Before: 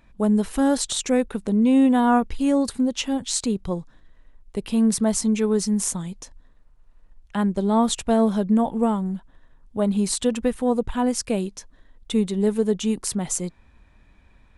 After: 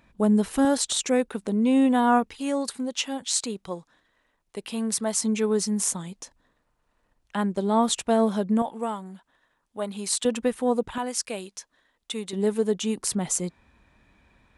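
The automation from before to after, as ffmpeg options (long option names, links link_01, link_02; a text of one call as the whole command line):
ffmpeg -i in.wav -af "asetnsamples=nb_out_samples=441:pad=0,asendcmd='0.65 highpass f 290;2.3 highpass f 680;5.23 highpass f 280;8.62 highpass f 1000;10.25 highpass f 280;10.98 highpass f 1100;12.33 highpass f 300;12.99 highpass f 120',highpass=frequency=100:poles=1" out.wav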